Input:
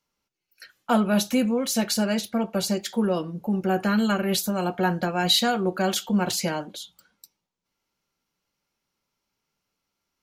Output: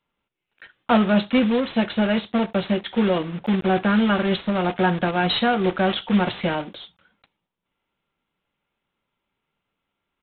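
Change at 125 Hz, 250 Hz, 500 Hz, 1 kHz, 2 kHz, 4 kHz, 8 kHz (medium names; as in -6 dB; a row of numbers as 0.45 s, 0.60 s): +3.5 dB, +3.5 dB, +3.5 dB, +3.5 dB, +4.5 dB, -1.5 dB, under -40 dB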